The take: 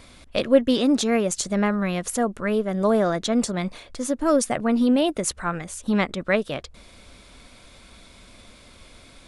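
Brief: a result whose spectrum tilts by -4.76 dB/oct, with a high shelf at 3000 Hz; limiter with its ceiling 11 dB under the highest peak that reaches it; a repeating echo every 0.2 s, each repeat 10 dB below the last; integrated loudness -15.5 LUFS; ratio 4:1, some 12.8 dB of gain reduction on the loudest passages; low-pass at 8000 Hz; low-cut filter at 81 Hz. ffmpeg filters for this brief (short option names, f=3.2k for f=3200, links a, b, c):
-af "highpass=81,lowpass=8k,highshelf=f=3k:g=-3,acompressor=threshold=-26dB:ratio=4,alimiter=level_in=0.5dB:limit=-24dB:level=0:latency=1,volume=-0.5dB,aecho=1:1:200|400|600|800:0.316|0.101|0.0324|0.0104,volume=17.5dB"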